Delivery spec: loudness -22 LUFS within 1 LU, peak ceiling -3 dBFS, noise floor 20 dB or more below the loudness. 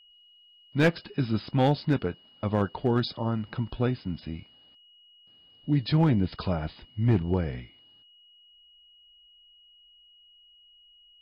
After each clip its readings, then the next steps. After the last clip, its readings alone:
clipped 0.4%; flat tops at -15.5 dBFS; steady tone 2900 Hz; tone level -55 dBFS; loudness -27.5 LUFS; peak -15.5 dBFS; loudness target -22.0 LUFS
-> clip repair -15.5 dBFS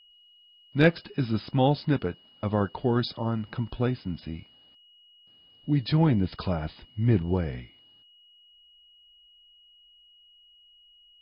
clipped 0.0%; steady tone 2900 Hz; tone level -55 dBFS
-> notch 2900 Hz, Q 30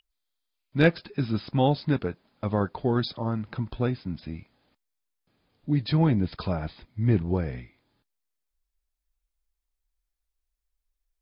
steady tone none; loudness -27.5 LUFS; peak -7.0 dBFS; loudness target -22.0 LUFS
-> gain +5.5 dB; limiter -3 dBFS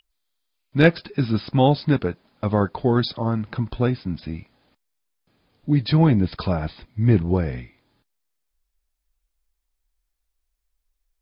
loudness -22.0 LUFS; peak -3.0 dBFS; noise floor -77 dBFS

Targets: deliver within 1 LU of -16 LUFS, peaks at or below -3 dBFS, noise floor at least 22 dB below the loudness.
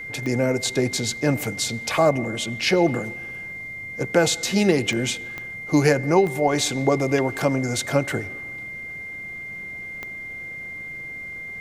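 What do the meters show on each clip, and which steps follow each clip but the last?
clicks 5; steady tone 2100 Hz; tone level -32 dBFS; loudness -23.5 LUFS; peak -5.0 dBFS; loudness target -16.0 LUFS
-> de-click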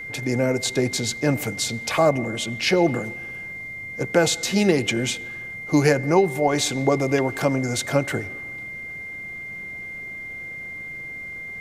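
clicks 0; steady tone 2100 Hz; tone level -32 dBFS
-> notch 2100 Hz, Q 30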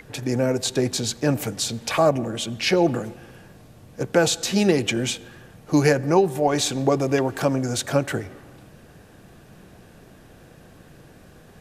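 steady tone none; loudness -22.5 LUFS; peak -5.0 dBFS; loudness target -16.0 LUFS
-> gain +6.5 dB; limiter -3 dBFS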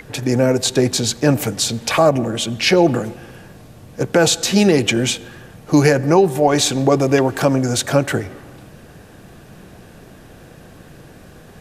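loudness -16.5 LUFS; peak -3.0 dBFS; noise floor -43 dBFS

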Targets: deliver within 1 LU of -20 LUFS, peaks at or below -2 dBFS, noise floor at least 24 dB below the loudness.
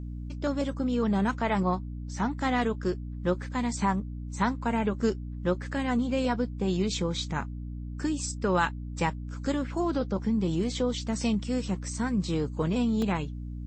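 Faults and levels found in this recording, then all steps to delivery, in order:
dropouts 1; longest dropout 2.5 ms; hum 60 Hz; harmonics up to 300 Hz; hum level -34 dBFS; loudness -29.5 LUFS; peak -12.0 dBFS; loudness target -20.0 LUFS
-> interpolate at 13.02, 2.5 ms; de-hum 60 Hz, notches 5; gain +9.5 dB

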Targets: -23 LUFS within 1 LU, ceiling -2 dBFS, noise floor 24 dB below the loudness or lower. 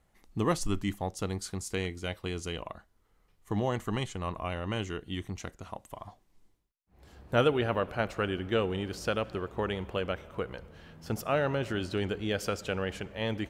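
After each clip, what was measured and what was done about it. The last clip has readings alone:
loudness -33.0 LUFS; peak -11.0 dBFS; loudness target -23.0 LUFS
-> gain +10 dB; limiter -2 dBFS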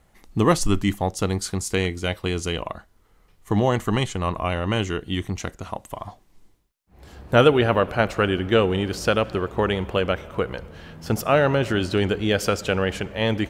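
loudness -23.0 LUFS; peak -2.0 dBFS; noise floor -58 dBFS

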